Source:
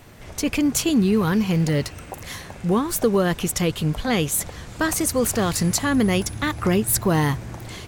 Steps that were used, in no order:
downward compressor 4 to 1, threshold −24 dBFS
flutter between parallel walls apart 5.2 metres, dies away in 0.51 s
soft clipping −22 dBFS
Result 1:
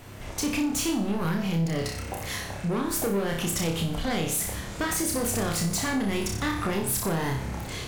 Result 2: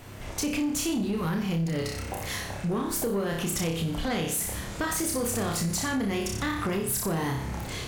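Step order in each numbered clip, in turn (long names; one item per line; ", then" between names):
soft clipping, then flutter between parallel walls, then downward compressor
flutter between parallel walls, then downward compressor, then soft clipping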